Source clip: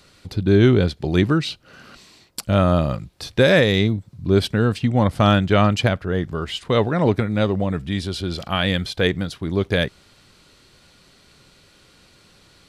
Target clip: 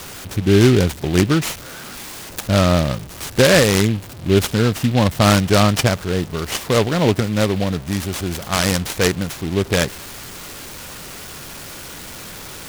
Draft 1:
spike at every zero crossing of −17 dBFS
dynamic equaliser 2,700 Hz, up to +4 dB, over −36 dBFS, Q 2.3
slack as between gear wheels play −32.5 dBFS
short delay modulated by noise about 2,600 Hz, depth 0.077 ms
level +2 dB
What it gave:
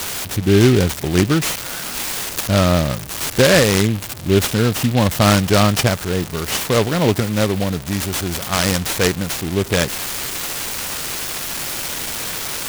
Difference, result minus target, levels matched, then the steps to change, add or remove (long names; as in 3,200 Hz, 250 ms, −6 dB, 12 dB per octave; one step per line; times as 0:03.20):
spike at every zero crossing: distortion +10 dB
change: spike at every zero crossing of −27.5 dBFS